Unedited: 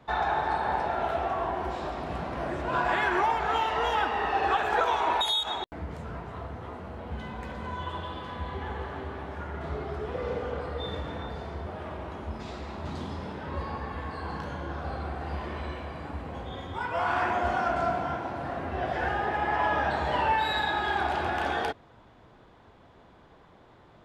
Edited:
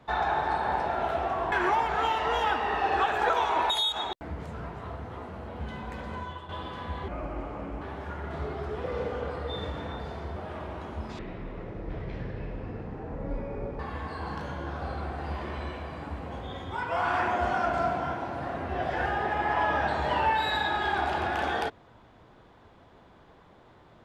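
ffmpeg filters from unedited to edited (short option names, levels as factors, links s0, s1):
-filter_complex "[0:a]asplit=7[s0][s1][s2][s3][s4][s5][s6];[s0]atrim=end=1.522[s7];[s1]atrim=start=3.028:end=8,asetpts=PTS-STARTPTS,afade=t=out:st=4.622:d=0.35:silence=0.266073[s8];[s2]atrim=start=8:end=8.594,asetpts=PTS-STARTPTS,afade=t=in:d=0.004:c=hsin:silence=0.266073[s9];[s3]atrim=start=8.59:end=9.12,asetpts=PTS-STARTPTS,asetrate=31752,aresample=44100,atrim=end_sample=32462,asetpts=PTS-STARTPTS[s10];[s4]atrim=start=9.116:end=12.494[s11];[s5]atrim=start=12.49:end=13.82,asetpts=PTS-STARTPTS,asetrate=22491,aresample=44100[s12];[s6]atrim=start=13.816[s13];[s8][s9]concat=n=2:v=0:a=1[s14];[s7][s14]acrossfade=d=0.004:c1=hsin:c2=hsin[s15];[s15][s10]acrossfade=d=0.004:c1=hsin:c2=hsin[s16];[s16][s11]acrossfade=d=0.004:c1=hsin:c2=hsin[s17];[s17][s12]acrossfade=d=0.004:c1=hsin:c2=hsin[s18];[s18][s13]acrossfade=d=0.004:c1=hsin:c2=hsin"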